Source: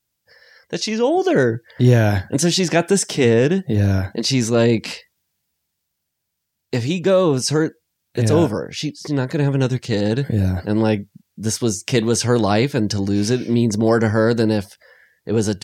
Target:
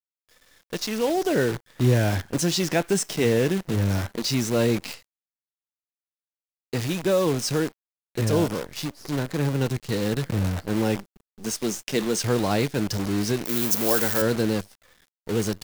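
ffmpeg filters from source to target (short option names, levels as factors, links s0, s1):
-filter_complex "[0:a]asettb=1/sr,asplit=3[s0][s1][s2];[s0]atrim=end=10.964[s3];[s1]atrim=start=10.96:end=12.24,asetpts=PTS-STARTPTS,afade=t=in:d=0.004:c=qsin,afade=t=out:st=1.276:d=0.004:c=qsin,highpass=f=160:w=0.5412,highpass=f=160:w=1.3066[s4];[s2]atrim=start=12.236[s5];[s3][s4]acrossfade=d=0.004:c1=hsin:c2=qsin[s6];[s6][s5]acrossfade=d=0.004:c1=qsin:c2=hsin,acrusher=bits=5:dc=4:mix=0:aa=0.000001,asettb=1/sr,asplit=3[s7][s8][s9];[s7]atrim=end=13.454[s10];[s8]atrim=start=13.45:end=14.22,asetpts=PTS-STARTPTS,afade=t=in:d=0.004:c=qsin,afade=t=out:st=0.766:d=0.004:c=qsin,aemphasis=mode=production:type=bsi[s11];[s9]atrim=start=14.216[s12];[s10][s11]acrossfade=d=0.004:c1=hsin:c2=qsin[s13];[s13][s12]acrossfade=d=0.004:c1=qsin:c2=hsin,volume=0.473"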